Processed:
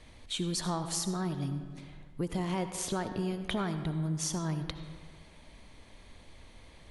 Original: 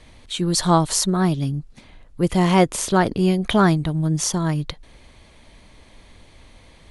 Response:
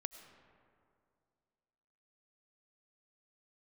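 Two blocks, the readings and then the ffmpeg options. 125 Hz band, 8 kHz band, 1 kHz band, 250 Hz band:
−13.0 dB, −11.5 dB, −16.5 dB, −14.0 dB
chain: -filter_complex "[0:a]acompressor=threshold=-24dB:ratio=6[link_01];[1:a]atrim=start_sample=2205,asetrate=61740,aresample=44100[link_02];[link_01][link_02]afir=irnorm=-1:irlink=0"

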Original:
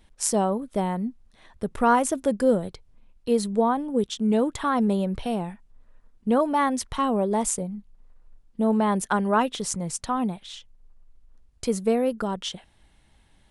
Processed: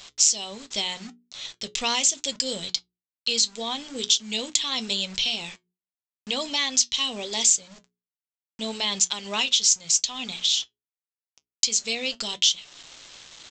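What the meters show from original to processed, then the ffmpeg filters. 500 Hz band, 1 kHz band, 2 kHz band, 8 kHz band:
−12.0 dB, −11.0 dB, +2.0 dB, +11.0 dB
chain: -af "aexciter=amount=12.9:drive=9.7:freq=2400,tiltshelf=frequency=1300:gain=-3.5,aresample=16000,acrusher=bits=5:mix=0:aa=0.000001,aresample=44100,acompressor=threshold=-15dB:ratio=2.5,bandreject=frequency=60:width_type=h:width=6,bandreject=frequency=120:width_type=h:width=6,bandreject=frequency=180:width_type=h:width=6,bandreject=frequency=240:width_type=h:width=6,bandreject=frequency=300:width_type=h:width=6,bandreject=frequency=360:width_type=h:width=6,bandreject=frequency=420:width_type=h:width=6,flanger=delay=6.7:depth=1.9:regen=-65:speed=0.79:shape=triangular,volume=-3dB"

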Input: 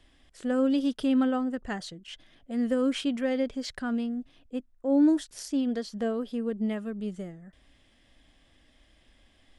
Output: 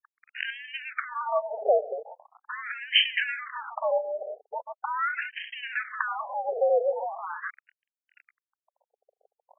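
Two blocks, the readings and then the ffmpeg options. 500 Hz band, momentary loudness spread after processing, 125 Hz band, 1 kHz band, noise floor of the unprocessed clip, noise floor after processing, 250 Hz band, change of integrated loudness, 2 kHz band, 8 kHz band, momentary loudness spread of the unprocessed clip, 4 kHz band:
+4.0 dB, 14 LU, can't be measured, +10.0 dB, −63 dBFS, below −85 dBFS, below −40 dB, 0.0 dB, +12.0 dB, below −35 dB, 14 LU, +11.5 dB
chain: -filter_complex "[0:a]acrossover=split=410[link_01][link_02];[link_02]acompressor=threshold=-47dB:ratio=10[link_03];[link_01][link_03]amix=inputs=2:normalize=0,asplit=2[link_04][link_05];[link_05]adelay=134.1,volume=-18dB,highshelf=frequency=4000:gain=-3.02[link_06];[link_04][link_06]amix=inputs=2:normalize=0,aresample=16000,aeval=exprs='sgn(val(0))*max(abs(val(0))-0.00251,0)':channel_layout=same,aresample=44100,aemphasis=mode=production:type=75kf,asoftclip=type=tanh:threshold=-27.5dB,afreqshift=-120,adynamicsmooth=sensitivity=7:basefreq=3100,equalizer=frequency=150:width=7.2:gain=7.5,alimiter=level_in=29.5dB:limit=-1dB:release=50:level=0:latency=1,afftfilt=real='re*between(b*sr/1024,550*pow(2300/550,0.5+0.5*sin(2*PI*0.41*pts/sr))/1.41,550*pow(2300/550,0.5+0.5*sin(2*PI*0.41*pts/sr))*1.41)':imag='im*between(b*sr/1024,550*pow(2300/550,0.5+0.5*sin(2*PI*0.41*pts/sr))/1.41,550*pow(2300/550,0.5+0.5*sin(2*PI*0.41*pts/sr))*1.41)':win_size=1024:overlap=0.75,volume=3dB"

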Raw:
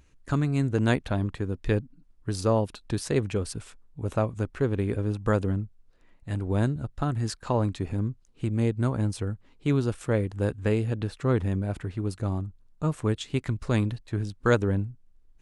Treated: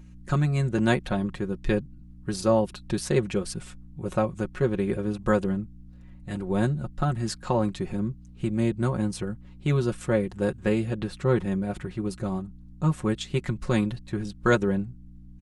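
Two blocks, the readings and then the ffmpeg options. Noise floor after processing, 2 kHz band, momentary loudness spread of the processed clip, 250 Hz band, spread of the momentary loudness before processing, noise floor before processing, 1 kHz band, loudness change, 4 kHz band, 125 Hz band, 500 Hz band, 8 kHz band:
−46 dBFS, +2.5 dB, 10 LU, +2.0 dB, 8 LU, −59 dBFS, +2.5 dB, +1.0 dB, +2.0 dB, −1.5 dB, +2.0 dB, +2.0 dB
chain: -af "aeval=exprs='val(0)+0.00501*(sin(2*PI*60*n/s)+sin(2*PI*2*60*n/s)/2+sin(2*PI*3*60*n/s)/3+sin(2*PI*4*60*n/s)/4+sin(2*PI*5*60*n/s)/5)':channel_layout=same,aecho=1:1:5.5:0.78"

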